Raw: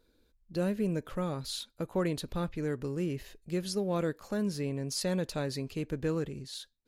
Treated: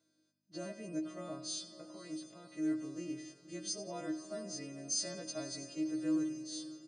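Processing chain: frequency quantiser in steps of 2 st; comb 1.6 ms, depth 39%; 1.73–2.52 level quantiser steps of 13 dB; feedback echo 90 ms, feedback 55%, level -14 dB; hum 50 Hz, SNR 32 dB; metallic resonator 310 Hz, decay 0.33 s, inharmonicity 0.03; on a send: diffused feedback echo 0.532 s, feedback 53%, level -15 dB; on the sum: FFT band-pass 100–9700 Hz; gain +12.5 dB

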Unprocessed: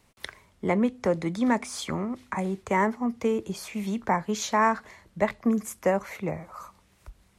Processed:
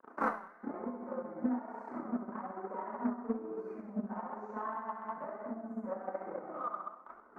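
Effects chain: flutter echo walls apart 11.3 m, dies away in 1.1 s; compressor 12:1, threshold -35 dBFS, peak gain reduction 19 dB; bell 440 Hz -4.5 dB 0.61 oct; sample leveller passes 5; gate -53 dBFS, range -9 dB; elliptic band-pass 230–1400 Hz, stop band 40 dB; flipped gate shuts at -34 dBFS, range -30 dB; Schroeder reverb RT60 0.67 s, combs from 25 ms, DRR -7 dB; flange 1.1 Hz, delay 1.8 ms, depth 3.6 ms, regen +46%; transient shaper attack +7 dB, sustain -5 dB; Doppler distortion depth 0.17 ms; gain +12 dB

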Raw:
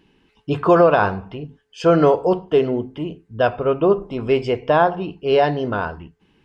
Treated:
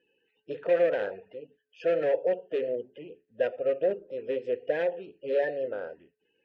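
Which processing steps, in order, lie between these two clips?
bin magnitudes rounded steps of 30 dB; hard clip -13 dBFS, distortion -11 dB; vowel filter e

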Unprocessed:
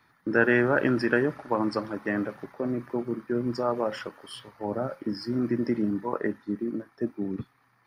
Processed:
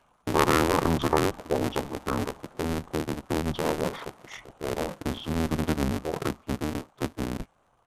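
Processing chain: cycle switcher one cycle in 2, inverted; pitch shift -7.5 st

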